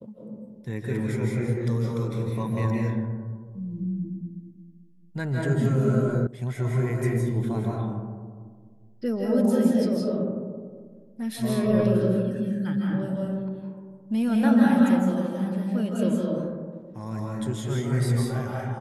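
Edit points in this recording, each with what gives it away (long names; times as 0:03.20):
0:06.27: cut off before it has died away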